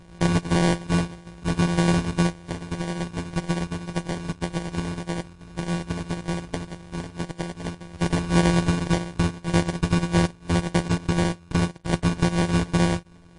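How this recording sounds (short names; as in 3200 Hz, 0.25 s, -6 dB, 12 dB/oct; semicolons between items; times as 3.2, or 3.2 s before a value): a buzz of ramps at a fixed pitch in blocks of 256 samples; phasing stages 6, 1.8 Hz, lowest notch 540–1300 Hz; aliases and images of a low sample rate 1300 Hz, jitter 0%; MP3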